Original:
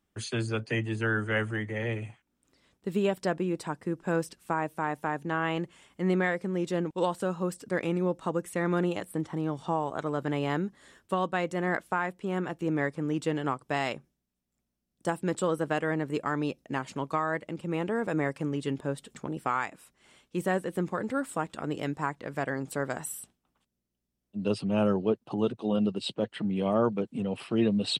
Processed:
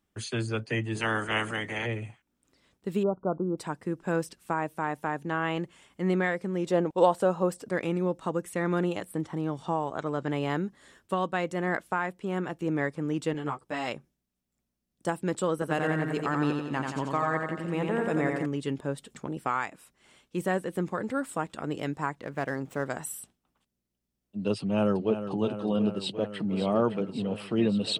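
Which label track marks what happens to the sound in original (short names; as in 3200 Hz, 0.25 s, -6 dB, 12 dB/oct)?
0.950000	1.850000	spectral limiter ceiling under each frame's peak by 20 dB
3.030000	3.580000	brick-wall FIR low-pass 1500 Hz
6.660000	7.710000	bell 660 Hz +9 dB 1.4 oct
9.860000	10.310000	steep low-pass 8100 Hz
13.330000	13.880000	ensemble effect
15.530000	18.460000	feedback echo 88 ms, feedback 57%, level -4 dB
22.220000	22.860000	median filter over 9 samples
24.590000	25.280000	echo throw 0.36 s, feedback 80%, level -10 dB
25.920000	26.540000	echo throw 0.56 s, feedback 75%, level -10 dB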